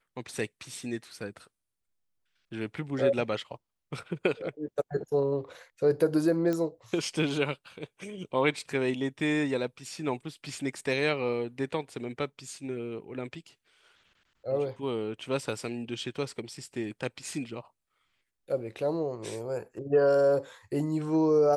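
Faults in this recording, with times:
0:06.53: click −19 dBFS

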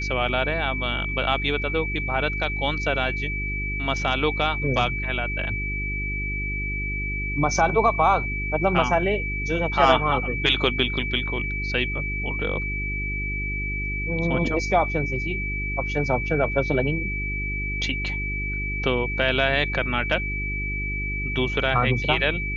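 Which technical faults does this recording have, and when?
mains hum 50 Hz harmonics 8 −30 dBFS
whistle 2,300 Hz −28 dBFS

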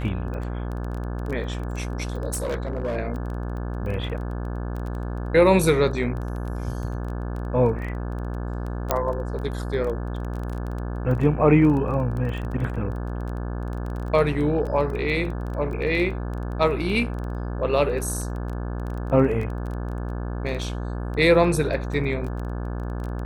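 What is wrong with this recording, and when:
mains buzz 60 Hz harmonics 29 −29 dBFS
surface crackle 14 per second −30 dBFS
0:02.33–0:02.97: clipping −22.5 dBFS
0:08.91: click −6 dBFS

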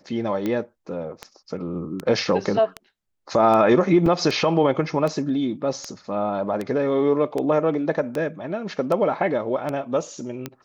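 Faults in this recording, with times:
scratch tick 78 rpm −14 dBFS
0:04.06: drop-out 3.3 ms

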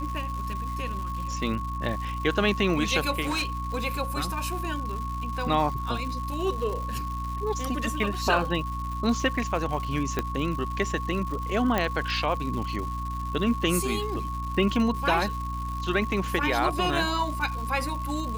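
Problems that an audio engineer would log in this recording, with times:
surface crackle 270 per second −34 dBFS
mains hum 60 Hz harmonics 5 −33 dBFS
whistle 1,100 Hz −33 dBFS
0:03.21–0:03.66: clipping −24 dBFS
0:10.19: click −12 dBFS
0:11.78: click −11 dBFS

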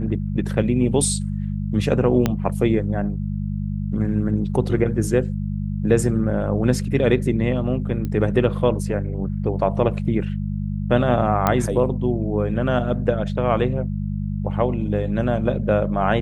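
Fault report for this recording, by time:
mains hum 50 Hz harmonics 4 −25 dBFS
0:02.26: click −6 dBFS
0:08.05: click −16 dBFS
0:11.47: click −5 dBFS

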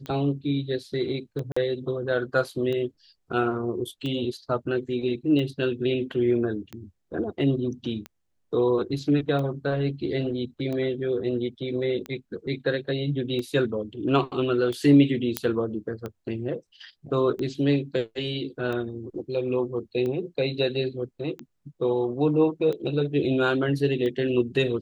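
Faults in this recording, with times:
scratch tick 45 rpm −21 dBFS
0:01.52–0:01.56: drop-out 45 ms
0:15.37: click −6 dBFS

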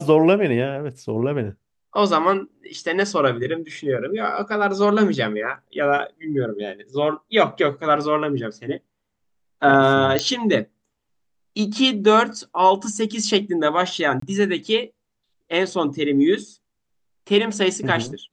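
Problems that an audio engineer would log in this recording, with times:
0:10.19: click −4 dBFS
0:14.20–0:14.22: drop-out 24 ms

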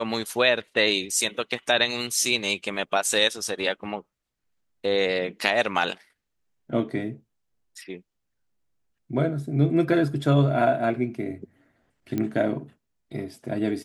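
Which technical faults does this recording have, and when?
0:12.18: click −15 dBFS

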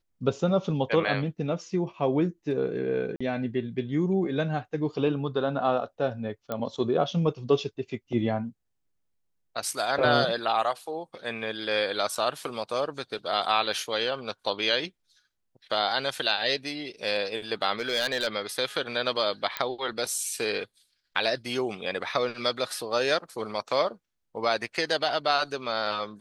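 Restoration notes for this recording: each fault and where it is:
0:03.16–0:03.21: drop-out 45 ms
0:06.52: click −17 dBFS
0:12.15: drop-out 4.9 ms
0:17.79–0:18.28: clipping −21 dBFS
0:19.57: click −12 dBFS

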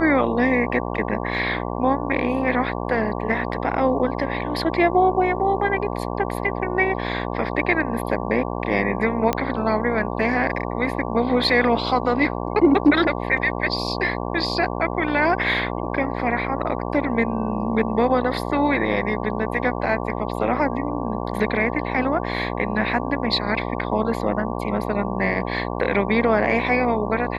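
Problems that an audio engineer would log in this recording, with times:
mains buzz 60 Hz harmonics 19 −27 dBFS
0:09.33: click −7 dBFS

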